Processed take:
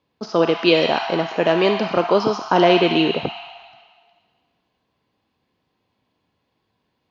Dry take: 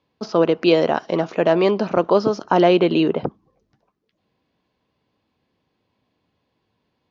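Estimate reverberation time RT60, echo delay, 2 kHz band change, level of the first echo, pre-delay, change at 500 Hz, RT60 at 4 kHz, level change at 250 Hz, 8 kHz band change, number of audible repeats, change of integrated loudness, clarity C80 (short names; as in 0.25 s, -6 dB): 1.8 s, none, +5.0 dB, none, 26 ms, -0.5 dB, 1.7 s, -1.0 dB, n/a, none, +0.5 dB, 5.5 dB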